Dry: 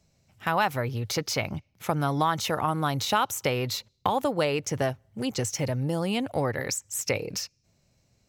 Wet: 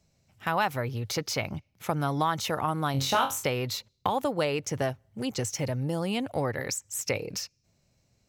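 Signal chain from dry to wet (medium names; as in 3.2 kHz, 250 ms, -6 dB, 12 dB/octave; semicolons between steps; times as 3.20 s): 2.92–3.44 s: flutter echo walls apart 3.8 m, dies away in 0.28 s; trim -2 dB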